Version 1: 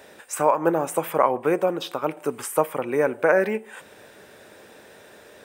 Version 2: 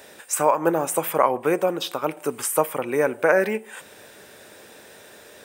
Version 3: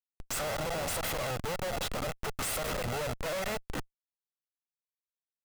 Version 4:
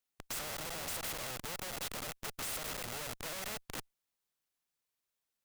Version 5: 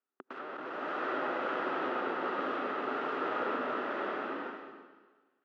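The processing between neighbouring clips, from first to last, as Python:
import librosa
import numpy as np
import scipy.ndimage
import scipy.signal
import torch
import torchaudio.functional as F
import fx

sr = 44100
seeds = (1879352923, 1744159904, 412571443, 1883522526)

y1 = fx.high_shelf(x, sr, hz=3300.0, db=7.5)
y2 = fx.lower_of_two(y1, sr, delay_ms=1.5)
y2 = fx.schmitt(y2, sr, flips_db=-34.5)
y2 = y2 * librosa.db_to_amplitude(-6.0)
y3 = fx.spectral_comp(y2, sr, ratio=2.0)
y3 = y3 * librosa.db_to_amplitude(2.0)
y4 = fx.cabinet(y3, sr, low_hz=240.0, low_slope=24, high_hz=2300.0, hz=(260.0, 380.0, 1300.0, 2200.0), db=(6, 10, 8, -8))
y4 = fx.rev_bloom(y4, sr, seeds[0], attack_ms=690, drr_db=-8.5)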